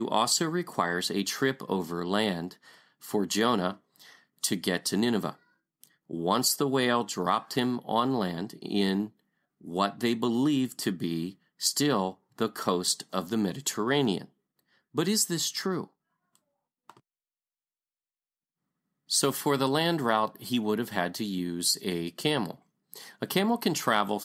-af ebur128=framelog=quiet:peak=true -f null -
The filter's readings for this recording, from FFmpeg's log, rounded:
Integrated loudness:
  I:         -28.4 LUFS
  Threshold: -39.0 LUFS
Loudness range:
  LRA:         4.4 LU
  Threshold: -49.7 LUFS
  LRA low:   -32.5 LUFS
  LRA high:  -28.1 LUFS
True peak:
  Peak:      -10.2 dBFS